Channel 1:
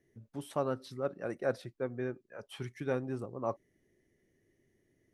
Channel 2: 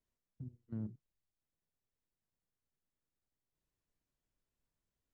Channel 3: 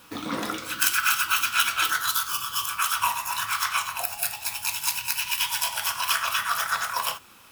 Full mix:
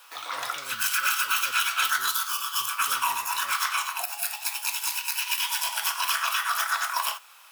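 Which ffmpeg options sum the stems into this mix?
-filter_complex "[0:a]volume=0.106[s0];[1:a]volume=0.178[s1];[2:a]highpass=f=690:w=0.5412,highpass=f=690:w=1.3066,volume=1.06[s2];[s0][s1][s2]amix=inputs=3:normalize=0,alimiter=limit=0.224:level=0:latency=1:release=49"

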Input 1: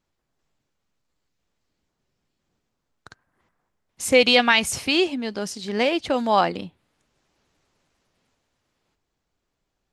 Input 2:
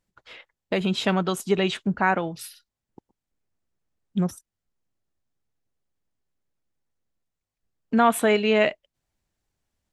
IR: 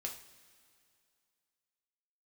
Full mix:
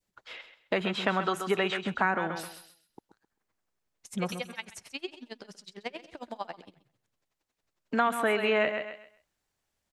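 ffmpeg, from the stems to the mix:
-filter_complex "[0:a]acompressor=threshold=0.126:ratio=6,flanger=delay=7.1:depth=7:regen=-90:speed=0.92:shape=sinusoidal,aeval=exprs='val(0)*pow(10,-34*(0.5-0.5*cos(2*PI*11*n/s))/20)':c=same,adelay=50,volume=0.708,asplit=2[s0][s1];[s1]volume=0.126[s2];[1:a]adynamicequalizer=threshold=0.0178:dfrequency=1400:dqfactor=0.92:tfrequency=1400:tqfactor=0.92:attack=5:release=100:ratio=0.375:range=3.5:mode=boostabove:tftype=bell,volume=1.12,asplit=2[s3][s4];[s4]volume=0.282[s5];[s2][s5]amix=inputs=2:normalize=0,aecho=0:1:131|262|393|524:1|0.24|0.0576|0.0138[s6];[s0][s3][s6]amix=inputs=3:normalize=0,lowshelf=f=280:g=-9,acrossover=split=390|2700[s7][s8][s9];[s7]acompressor=threshold=0.0251:ratio=4[s10];[s8]acompressor=threshold=0.0501:ratio=4[s11];[s9]acompressor=threshold=0.00631:ratio=4[s12];[s10][s11][s12]amix=inputs=3:normalize=0"

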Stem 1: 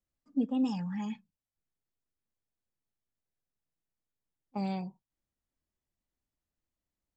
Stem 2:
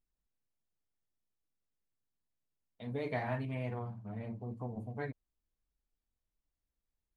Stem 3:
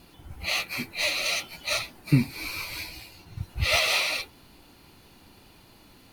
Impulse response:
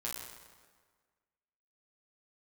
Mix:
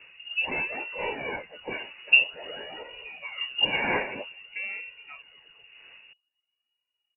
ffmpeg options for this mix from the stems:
-filter_complex "[0:a]volume=1[s0];[1:a]adelay=100,volume=0.447[s1];[2:a]flanger=delay=7.5:depth=9.3:regen=56:speed=0.51:shape=triangular,volume=1.06[s2];[s0][s1][s2]amix=inputs=3:normalize=0,aphaser=in_gain=1:out_gain=1:delay=2.1:decay=0.58:speed=0.51:type=sinusoidal,lowpass=f=2500:t=q:w=0.5098,lowpass=f=2500:t=q:w=0.6013,lowpass=f=2500:t=q:w=0.9,lowpass=f=2500:t=q:w=2.563,afreqshift=-2900"

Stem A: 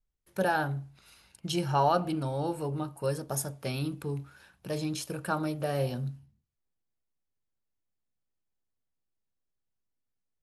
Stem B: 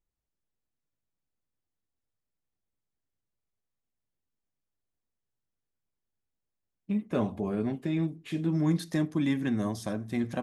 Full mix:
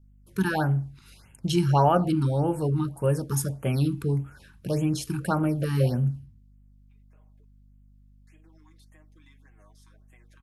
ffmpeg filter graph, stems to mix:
-filter_complex "[0:a]aeval=exprs='val(0)+0.000562*(sin(2*PI*50*n/s)+sin(2*PI*2*50*n/s)/2+sin(2*PI*3*50*n/s)/3+sin(2*PI*4*50*n/s)/4+sin(2*PI*5*50*n/s)/5)':c=same,lowshelf=f=310:g=9,volume=1.33,asplit=2[s0][s1];[1:a]highpass=790,aecho=1:1:6.4:0.86,acompressor=threshold=0.00501:ratio=5,volume=0.224,asplit=3[s2][s3][s4];[s2]atrim=end=7.45,asetpts=PTS-STARTPTS,afade=t=out:st=7.446:d=0.004:c=hsin[s5];[s3]atrim=start=7.45:end=8.27,asetpts=PTS-STARTPTS,volume=0[s6];[s4]atrim=start=8.27,asetpts=PTS-STARTPTS,afade=t=in:d=0.004:c=hsin[s7];[s5][s6][s7]concat=n=3:v=0:a=1[s8];[s1]apad=whole_len=459998[s9];[s8][s9]sidechaincompress=threshold=0.00891:ratio=12:attack=31:release=1430[s10];[s0][s10]amix=inputs=2:normalize=0,afftfilt=real='re*(1-between(b*sr/1024,540*pow(4900/540,0.5+0.5*sin(2*PI*1.7*pts/sr))/1.41,540*pow(4900/540,0.5+0.5*sin(2*PI*1.7*pts/sr))*1.41))':imag='im*(1-between(b*sr/1024,540*pow(4900/540,0.5+0.5*sin(2*PI*1.7*pts/sr))/1.41,540*pow(4900/540,0.5+0.5*sin(2*PI*1.7*pts/sr))*1.41))':win_size=1024:overlap=0.75"

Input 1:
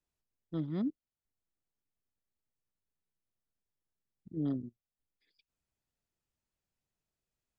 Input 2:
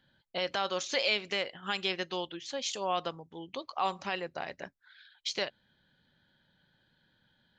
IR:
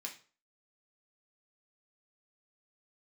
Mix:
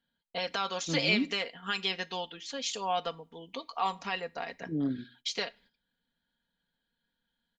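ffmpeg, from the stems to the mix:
-filter_complex "[0:a]adelay=350,volume=1.06,asplit=2[s0][s1];[s1]volume=0.562[s2];[1:a]asubboost=boost=2.5:cutoff=56,aecho=1:1:4.3:0.65,volume=0.794,asplit=2[s3][s4];[s4]volume=0.251[s5];[2:a]atrim=start_sample=2205[s6];[s2][s5]amix=inputs=2:normalize=0[s7];[s7][s6]afir=irnorm=-1:irlink=0[s8];[s0][s3][s8]amix=inputs=3:normalize=0,agate=range=0.224:threshold=0.001:ratio=16:detection=peak"

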